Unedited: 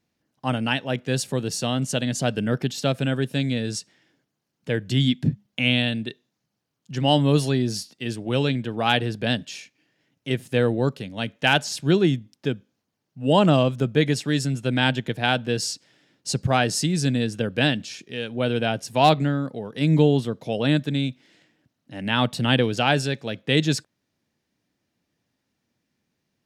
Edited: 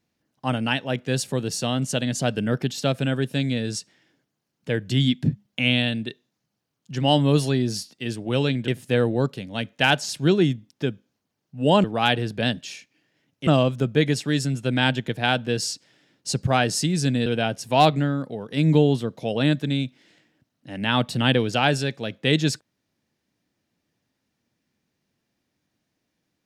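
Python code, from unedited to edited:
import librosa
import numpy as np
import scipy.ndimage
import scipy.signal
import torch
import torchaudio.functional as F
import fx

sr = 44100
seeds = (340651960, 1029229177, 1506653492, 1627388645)

y = fx.edit(x, sr, fx.move(start_s=8.68, length_s=1.63, to_s=13.47),
    fx.cut(start_s=17.26, length_s=1.24), tone=tone)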